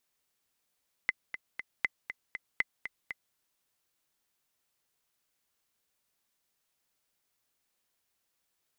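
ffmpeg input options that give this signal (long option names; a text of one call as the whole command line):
ffmpeg -f lavfi -i "aevalsrc='pow(10,(-13.5-10.5*gte(mod(t,3*60/238),60/238))/20)*sin(2*PI*2040*mod(t,60/238))*exp(-6.91*mod(t,60/238)/0.03)':duration=2.26:sample_rate=44100" out.wav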